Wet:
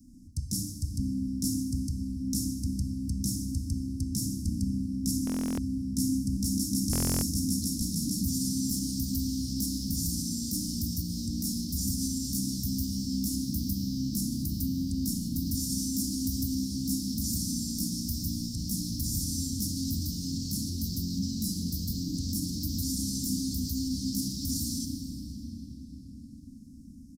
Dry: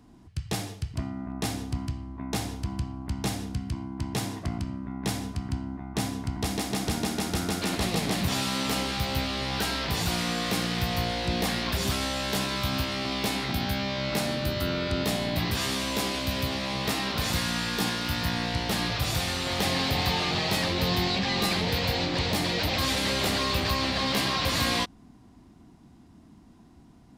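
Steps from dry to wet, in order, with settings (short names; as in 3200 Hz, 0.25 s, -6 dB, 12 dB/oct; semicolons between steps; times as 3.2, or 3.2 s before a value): in parallel at -10.5 dB: soft clip -24 dBFS, distortion -15 dB; on the sum: reverb RT60 5.7 s, pre-delay 14 ms, DRR 6.5 dB; limiter -18.5 dBFS, peak gain reduction 7 dB; Chebyshev band-stop 270–5400 Hz, order 4; high shelf 4800 Hz +4 dB; notches 60/120/180/240 Hz; comb 4 ms, depth 41%; stuck buffer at 5.25/6.91, samples 1024, times 13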